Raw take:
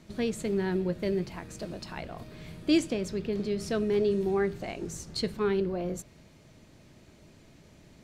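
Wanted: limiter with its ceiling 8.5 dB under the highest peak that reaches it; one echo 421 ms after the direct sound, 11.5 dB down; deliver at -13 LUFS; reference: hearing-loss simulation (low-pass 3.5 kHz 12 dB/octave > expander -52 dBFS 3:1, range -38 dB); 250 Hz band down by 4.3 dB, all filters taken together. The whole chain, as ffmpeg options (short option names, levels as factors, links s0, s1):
-af "equalizer=f=250:t=o:g=-6.5,alimiter=level_in=1.12:limit=0.0631:level=0:latency=1,volume=0.891,lowpass=3500,aecho=1:1:421:0.266,agate=range=0.0126:threshold=0.00251:ratio=3,volume=13.3"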